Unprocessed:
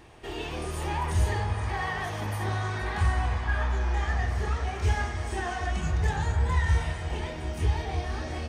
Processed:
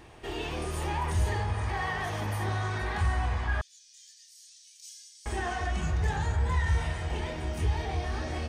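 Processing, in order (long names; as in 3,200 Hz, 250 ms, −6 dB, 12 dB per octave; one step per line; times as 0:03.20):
0:03.61–0:05.26: inverse Chebyshev high-pass filter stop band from 1,100 Hz, stop band 70 dB
in parallel at −1 dB: brickwall limiter −25.5 dBFS, peak gain reduction 11.5 dB
on the sum: level −5 dB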